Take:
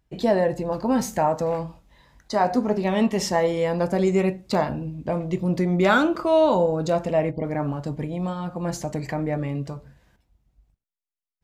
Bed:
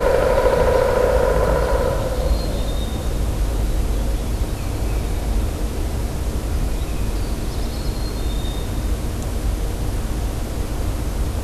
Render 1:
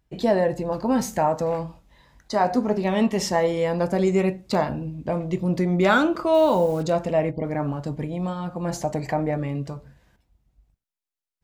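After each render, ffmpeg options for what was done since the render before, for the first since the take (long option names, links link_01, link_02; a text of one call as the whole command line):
ffmpeg -i in.wav -filter_complex "[0:a]asettb=1/sr,asplit=3[link_01][link_02][link_03];[link_01]atrim=end=6.344[link_04];[link_02]atrim=start=6.34:end=6.83,asetpts=PTS-STARTPTS,afade=type=in:duration=0.004:curve=qsin,afade=type=out:start_time=0.486:duration=0.004:curve=qsin,acrusher=bits=6:mix=0:aa=0.5[link_05];[link_03]atrim=start=6.826[link_06];[link_04][link_05]acrossfade=duration=0.004:curve1=hsin:curve2=qsin[link_07];[link_07][link_06]acrossfade=duration=0.004:curve1=qsin:curve2=hsin,asettb=1/sr,asplit=3[link_08][link_09][link_10];[link_08]atrim=end=8.714[link_11];[link_09]atrim=start=8.71:end=9.31,asetpts=PTS-STARTPTS,afade=type=in:duration=0.004:curve=qsin,afade=type=out:start_time=0.596:duration=0.004:curve=qsin,equalizer=frequency=740:width_type=o:width=0.94:gain=7[link_12];[link_10]atrim=start=9.306[link_13];[link_11][link_12]acrossfade=duration=0.004:curve1=hsin:curve2=qsin[link_14];[link_14][link_13]acrossfade=duration=0.004:curve1=qsin:curve2=hsin" out.wav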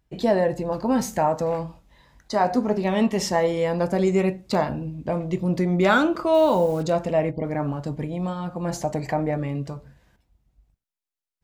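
ffmpeg -i in.wav -af anull out.wav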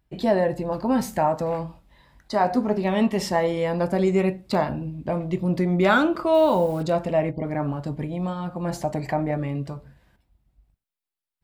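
ffmpeg -i in.wav -af "equalizer=frequency=6400:width=2.7:gain=-7,bandreject=frequency=470:width=12" out.wav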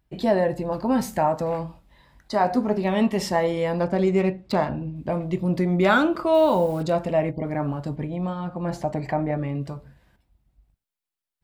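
ffmpeg -i in.wav -filter_complex "[0:a]asettb=1/sr,asplit=3[link_01][link_02][link_03];[link_01]atrim=end=3.824[link_04];[link_02]atrim=start=3.82:end=4.96,asetpts=PTS-STARTPTS,afade=type=in:duration=0.004:curve=qsin,afade=type=out:start_time=1.136:duration=0.004:curve=qsin,adynamicsmooth=sensitivity=6.5:basefreq=4600[link_05];[link_03]atrim=start=4.956[link_06];[link_04][link_05]acrossfade=duration=0.004:curve1=hsin:curve2=qsin[link_07];[link_07][link_06]acrossfade=duration=0.004:curve1=qsin:curve2=hsin,asettb=1/sr,asplit=3[link_08][link_09][link_10];[link_08]atrim=end=7.964[link_11];[link_09]atrim=start=7.96:end=9.61,asetpts=PTS-STARTPTS,afade=type=in:duration=0.004:curve=qsin,afade=type=out:start_time=1.646:duration=0.004:curve=qsin,highshelf=frequency=5900:gain=-11[link_12];[link_10]atrim=start=9.606[link_13];[link_11][link_12]acrossfade=duration=0.004:curve1=hsin:curve2=qsin[link_14];[link_14][link_13]acrossfade=duration=0.004:curve1=qsin:curve2=hsin" out.wav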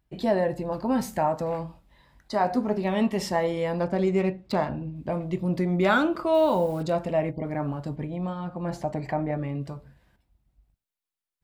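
ffmpeg -i in.wav -af "volume=-3dB" out.wav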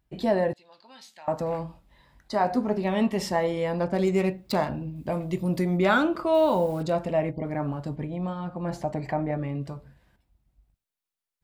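ffmpeg -i in.wav -filter_complex "[0:a]asettb=1/sr,asplit=3[link_01][link_02][link_03];[link_01]atrim=end=0.534[link_04];[link_02]atrim=start=0.53:end=1.28,asetpts=PTS-STARTPTS,afade=type=in:duration=0.004:curve=qsin,afade=type=out:start_time=0.746:duration=0.004:curve=qsin,bandpass=frequency=3700:width_type=q:width=2.8[link_05];[link_03]atrim=start=1.276[link_06];[link_04][link_05]acrossfade=duration=0.004:curve1=hsin:curve2=qsin[link_07];[link_07][link_06]acrossfade=duration=0.004:curve1=qsin:curve2=hsin,asplit=3[link_08][link_09][link_10];[link_08]afade=type=out:start_time=3.93:duration=0.02[link_11];[link_09]aemphasis=mode=production:type=50kf,afade=type=in:start_time=3.93:duration=0.02,afade=type=out:start_time=5.77:duration=0.02[link_12];[link_10]afade=type=in:start_time=5.77:duration=0.02[link_13];[link_11][link_12][link_13]amix=inputs=3:normalize=0" out.wav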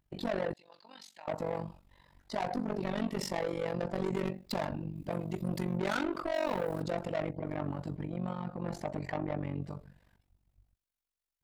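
ffmpeg -i in.wav -af "asoftclip=type=tanh:threshold=-26dB,tremolo=f=47:d=0.919" out.wav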